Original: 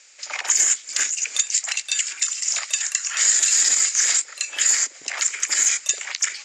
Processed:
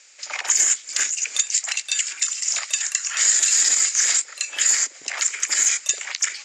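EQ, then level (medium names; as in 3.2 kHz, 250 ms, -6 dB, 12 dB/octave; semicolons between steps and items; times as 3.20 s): bass shelf 60 Hz -8 dB; 0.0 dB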